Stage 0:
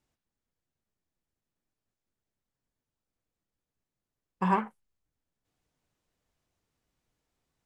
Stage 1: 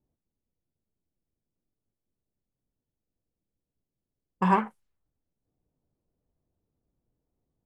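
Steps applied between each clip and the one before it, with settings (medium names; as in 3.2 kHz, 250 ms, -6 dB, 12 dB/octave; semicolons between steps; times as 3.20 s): level-controlled noise filter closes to 510 Hz, open at -33.5 dBFS; trim +3.5 dB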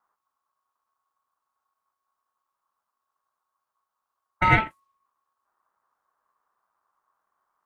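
ring modulator 1.1 kHz; trim +6.5 dB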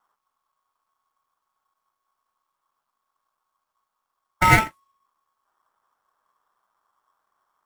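dead-time distortion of 0.07 ms; trim +3.5 dB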